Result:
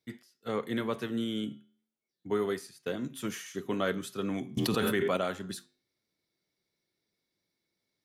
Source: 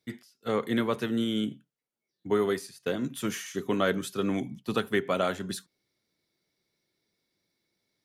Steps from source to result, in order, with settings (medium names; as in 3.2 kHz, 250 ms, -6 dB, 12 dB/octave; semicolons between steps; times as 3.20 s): flange 0.33 Hz, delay 9.2 ms, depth 2.8 ms, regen -87%; 4.57–5.17 s: level flattener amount 100%